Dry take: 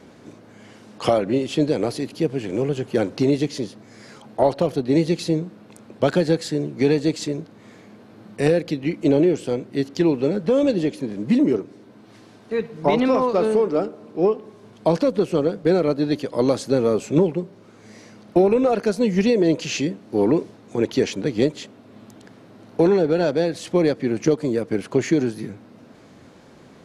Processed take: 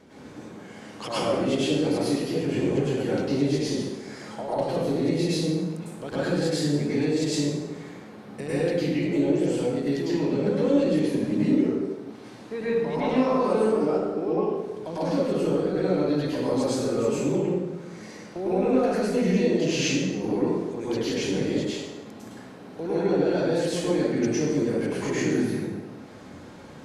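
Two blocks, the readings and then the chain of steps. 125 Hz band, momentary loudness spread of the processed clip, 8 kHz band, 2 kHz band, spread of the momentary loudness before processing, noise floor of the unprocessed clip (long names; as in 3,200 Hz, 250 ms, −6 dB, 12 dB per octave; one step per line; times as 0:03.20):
−2.5 dB, 17 LU, +1.0 dB, −2.0 dB, 9 LU, −48 dBFS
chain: downward compressor, threshold −20 dBFS, peak gain reduction 8.5 dB
brickwall limiter −18.5 dBFS, peak gain reduction 9.5 dB
dense smooth reverb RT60 1.2 s, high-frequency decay 0.7×, pre-delay 90 ms, DRR −10 dB
level −6.5 dB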